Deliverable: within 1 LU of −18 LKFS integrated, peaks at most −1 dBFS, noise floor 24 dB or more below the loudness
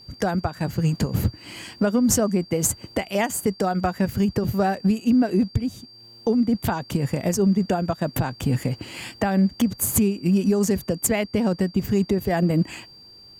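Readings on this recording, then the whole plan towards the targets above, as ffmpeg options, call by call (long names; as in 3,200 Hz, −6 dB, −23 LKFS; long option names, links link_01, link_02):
interfering tone 4,700 Hz; level of the tone −45 dBFS; integrated loudness −23.0 LKFS; sample peak −8.0 dBFS; target loudness −18.0 LKFS
→ -af "bandreject=frequency=4700:width=30"
-af "volume=5dB"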